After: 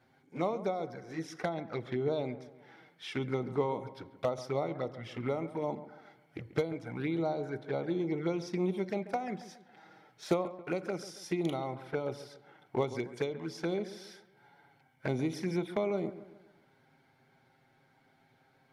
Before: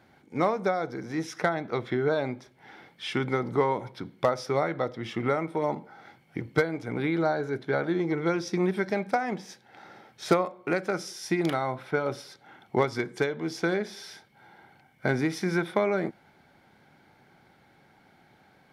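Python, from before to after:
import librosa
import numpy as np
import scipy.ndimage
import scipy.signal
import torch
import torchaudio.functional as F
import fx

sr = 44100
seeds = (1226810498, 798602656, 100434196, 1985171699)

y = fx.env_flanger(x, sr, rest_ms=8.2, full_db=-23.5)
y = fx.echo_wet_lowpass(y, sr, ms=138, feedback_pct=43, hz=2100.0, wet_db=-14.0)
y = F.gain(torch.from_numpy(y), -5.0).numpy()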